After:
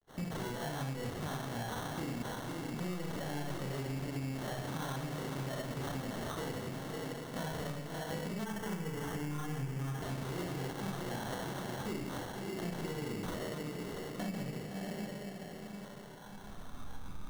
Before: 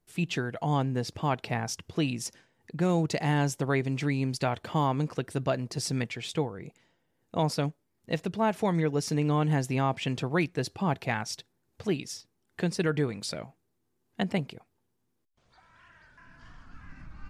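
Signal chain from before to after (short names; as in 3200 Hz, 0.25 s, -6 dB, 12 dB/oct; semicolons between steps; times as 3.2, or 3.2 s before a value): G.711 law mismatch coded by A; diffused feedback echo 0.617 s, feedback 48%, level -15.5 dB; limiter -24.5 dBFS, peak gain reduction 10 dB; soft clip -35.5 dBFS, distortion -9 dB; Schroeder reverb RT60 0.74 s, combs from 30 ms, DRR -4.5 dB; sample-and-hold 18×; 8.44–10.02 thirty-one-band EQ 125 Hz +6 dB, 630 Hz -9 dB, 4000 Hz -11 dB; compressor 5:1, threshold -39 dBFS, peak gain reduction 11.5 dB; gain +3 dB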